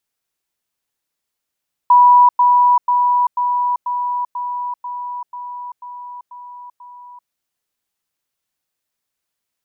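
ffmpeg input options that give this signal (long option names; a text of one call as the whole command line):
ffmpeg -f lavfi -i "aevalsrc='pow(10,(-5.5-3*floor(t/0.49))/20)*sin(2*PI*980*t)*clip(min(mod(t,0.49),0.39-mod(t,0.49))/0.005,0,1)':duration=5.39:sample_rate=44100" out.wav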